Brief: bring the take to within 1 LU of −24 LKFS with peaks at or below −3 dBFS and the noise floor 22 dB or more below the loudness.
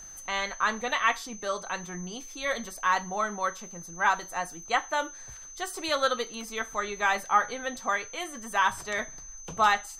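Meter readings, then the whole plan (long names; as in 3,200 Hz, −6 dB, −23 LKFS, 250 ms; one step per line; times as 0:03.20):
crackle rate 36 per second; interfering tone 6,200 Hz; level of the tone −43 dBFS; integrated loudness −29.0 LKFS; sample peak −10.0 dBFS; target loudness −24.0 LKFS
→ click removal
notch filter 6,200 Hz, Q 30
level +5 dB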